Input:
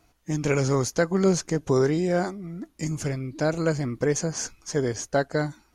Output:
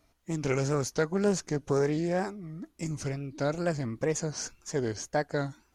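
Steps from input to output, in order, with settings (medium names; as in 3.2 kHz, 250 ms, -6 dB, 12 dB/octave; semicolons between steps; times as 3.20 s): wow and flutter 120 cents; loudspeaker Doppler distortion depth 0.15 ms; trim -5 dB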